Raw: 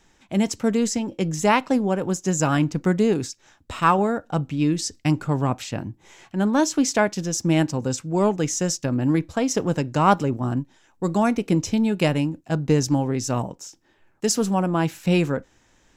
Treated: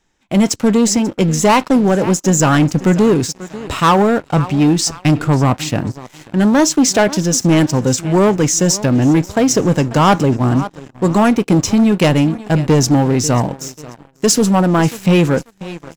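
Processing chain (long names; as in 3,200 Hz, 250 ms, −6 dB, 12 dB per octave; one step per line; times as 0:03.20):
repeating echo 540 ms, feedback 41%, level −19.5 dB
leveller curve on the samples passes 3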